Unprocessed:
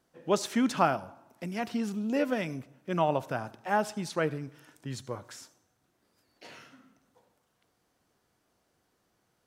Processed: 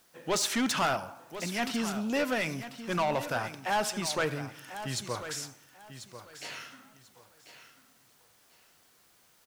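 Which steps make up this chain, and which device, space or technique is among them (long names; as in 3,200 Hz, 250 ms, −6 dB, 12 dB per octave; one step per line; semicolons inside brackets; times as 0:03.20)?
tilt shelving filter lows −6 dB, about 780 Hz
open-reel tape (soft clipping −27.5 dBFS, distortion −7 dB; parametric band 120 Hz +2.5 dB; white noise bed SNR 32 dB)
repeating echo 1,042 ms, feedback 21%, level −12 dB
level +4.5 dB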